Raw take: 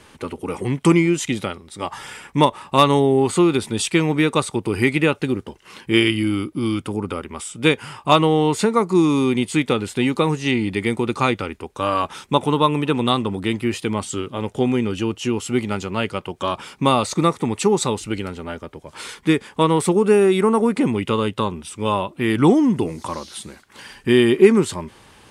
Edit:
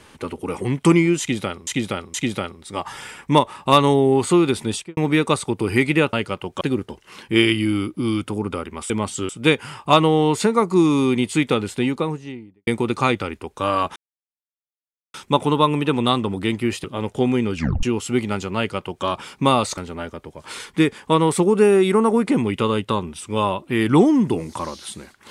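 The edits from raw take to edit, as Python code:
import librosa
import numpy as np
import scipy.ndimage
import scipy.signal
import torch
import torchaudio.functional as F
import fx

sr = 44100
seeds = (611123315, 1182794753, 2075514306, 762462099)

y = fx.studio_fade_out(x, sr, start_s=3.73, length_s=0.3)
y = fx.studio_fade_out(y, sr, start_s=9.77, length_s=1.09)
y = fx.edit(y, sr, fx.repeat(start_s=1.2, length_s=0.47, count=3),
    fx.insert_silence(at_s=12.15, length_s=1.18),
    fx.move(start_s=13.85, length_s=0.39, to_s=7.48),
    fx.tape_stop(start_s=14.95, length_s=0.28),
    fx.duplicate(start_s=15.97, length_s=0.48, to_s=5.19),
    fx.cut(start_s=17.17, length_s=1.09), tone=tone)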